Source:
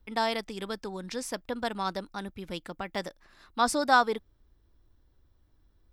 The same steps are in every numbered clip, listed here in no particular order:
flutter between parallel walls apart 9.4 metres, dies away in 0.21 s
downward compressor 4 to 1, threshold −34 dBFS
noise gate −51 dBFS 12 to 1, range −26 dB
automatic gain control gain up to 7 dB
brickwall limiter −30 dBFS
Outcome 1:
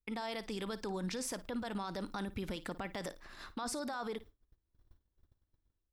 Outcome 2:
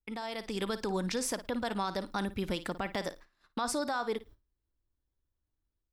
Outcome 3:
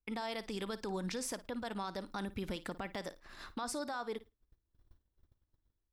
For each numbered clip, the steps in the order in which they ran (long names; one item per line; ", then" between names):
automatic gain control, then brickwall limiter, then downward compressor, then noise gate, then flutter between parallel walls
noise gate, then downward compressor, then flutter between parallel walls, then brickwall limiter, then automatic gain control
automatic gain control, then downward compressor, then brickwall limiter, then noise gate, then flutter between parallel walls